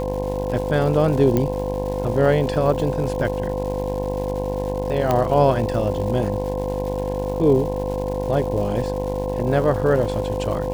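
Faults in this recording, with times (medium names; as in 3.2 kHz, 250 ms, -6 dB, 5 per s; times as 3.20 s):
buzz 50 Hz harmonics 21 -27 dBFS
crackle 360 per s -31 dBFS
whine 510 Hz -25 dBFS
1.37 s: pop -8 dBFS
5.11 s: pop -7 dBFS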